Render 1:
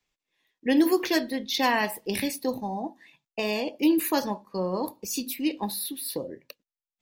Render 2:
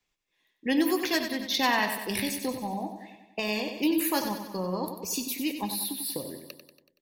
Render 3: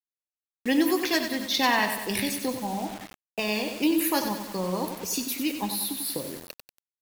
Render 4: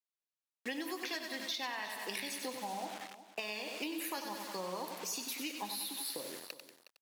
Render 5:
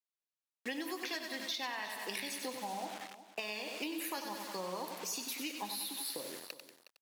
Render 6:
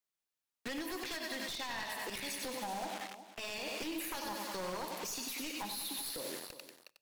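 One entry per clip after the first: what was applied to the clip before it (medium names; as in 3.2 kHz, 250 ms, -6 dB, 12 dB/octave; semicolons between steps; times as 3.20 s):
dynamic bell 420 Hz, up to -6 dB, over -36 dBFS, Q 0.89; on a send: feedback delay 94 ms, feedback 57%, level -8.5 dB
bit crusher 7-bit; trim +2 dB
frequency weighting A; compression 10:1, threshold -32 dBFS, peak gain reduction 14 dB; delay 364 ms -14.5 dB; trim -4 dB
no audible change
one-sided wavefolder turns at -36.5 dBFS; peak limiter -33.5 dBFS, peak gain reduction 9.5 dB; on a send at -20 dB: reverberation RT60 0.50 s, pre-delay 4 ms; on the sum: trim +3 dB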